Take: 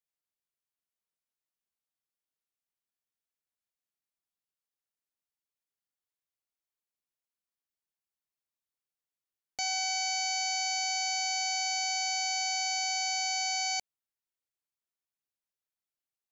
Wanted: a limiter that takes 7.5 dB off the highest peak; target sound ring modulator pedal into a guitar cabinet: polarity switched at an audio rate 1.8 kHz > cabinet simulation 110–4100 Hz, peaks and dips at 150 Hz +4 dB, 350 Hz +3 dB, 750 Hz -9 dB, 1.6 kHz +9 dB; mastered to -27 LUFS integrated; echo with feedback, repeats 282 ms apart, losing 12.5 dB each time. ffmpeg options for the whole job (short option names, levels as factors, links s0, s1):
-af "alimiter=level_in=2:limit=0.0631:level=0:latency=1,volume=0.501,aecho=1:1:282|564|846:0.237|0.0569|0.0137,aeval=exprs='val(0)*sgn(sin(2*PI*1800*n/s))':c=same,highpass=110,equalizer=f=150:t=q:w=4:g=4,equalizer=f=350:t=q:w=4:g=3,equalizer=f=750:t=q:w=4:g=-9,equalizer=f=1600:t=q:w=4:g=9,lowpass=f=4100:w=0.5412,lowpass=f=4100:w=1.3066,volume=4.47"